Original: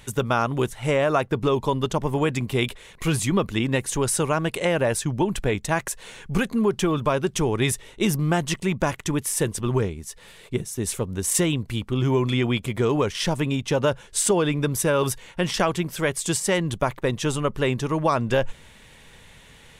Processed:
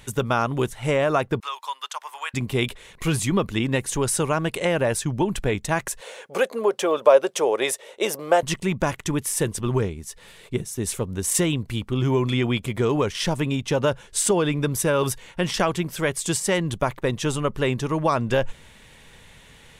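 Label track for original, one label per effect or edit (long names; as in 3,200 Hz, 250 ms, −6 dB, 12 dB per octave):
1.400000	2.340000	high-pass filter 1,000 Hz 24 dB per octave
6.010000	8.430000	high-pass with resonance 540 Hz, resonance Q 4.3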